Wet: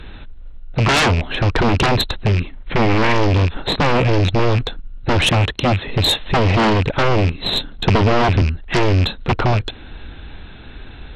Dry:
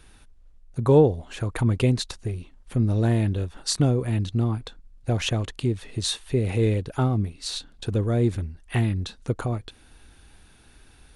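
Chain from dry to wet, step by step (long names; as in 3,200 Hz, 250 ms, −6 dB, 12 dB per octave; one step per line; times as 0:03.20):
loose part that buzzes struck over −31 dBFS, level −26 dBFS
0:05.30–0:05.88: high-pass filter 43 Hz 24 dB per octave
in parallel at −10 dB: decimation without filtering 31×
on the sum: linear-phase brick-wall low-pass 4,200 Hz
sine wavefolder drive 19 dB, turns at −3.5 dBFS
0:02.38–0:03.13: parametric band 2,100 Hz +6 dB 0.55 octaves
0:07.87–0:08.42: multiband upward and downward compressor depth 100%
level −7.5 dB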